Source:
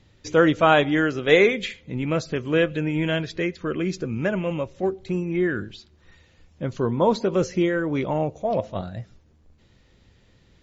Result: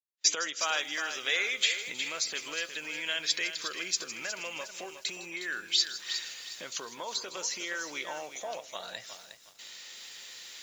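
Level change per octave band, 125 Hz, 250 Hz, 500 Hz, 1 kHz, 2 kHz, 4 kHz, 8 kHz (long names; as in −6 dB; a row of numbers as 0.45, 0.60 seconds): −34.5 dB, −26.0 dB, −20.5 dB, −13.0 dB, −5.5 dB, +4.0 dB, can't be measured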